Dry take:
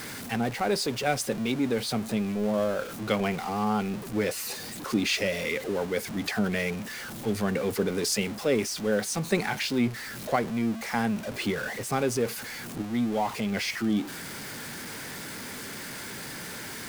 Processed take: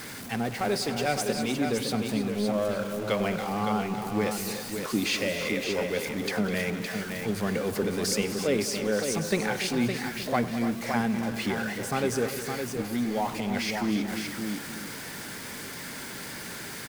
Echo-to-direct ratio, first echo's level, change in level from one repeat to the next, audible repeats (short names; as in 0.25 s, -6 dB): -4.0 dB, -17.5 dB, no steady repeat, 5